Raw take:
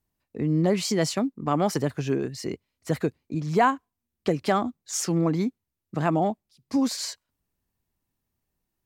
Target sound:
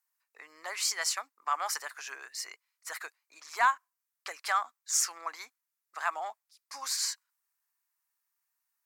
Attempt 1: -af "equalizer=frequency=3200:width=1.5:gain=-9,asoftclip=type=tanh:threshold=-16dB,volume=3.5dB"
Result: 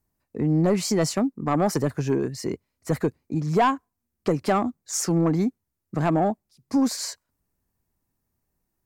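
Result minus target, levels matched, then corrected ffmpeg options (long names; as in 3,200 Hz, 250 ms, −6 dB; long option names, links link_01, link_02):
1,000 Hz band −2.5 dB
-af "highpass=frequency=1100:width=0.5412,highpass=frequency=1100:width=1.3066,equalizer=frequency=3200:width=1.5:gain=-9,asoftclip=type=tanh:threshold=-16dB,volume=3.5dB"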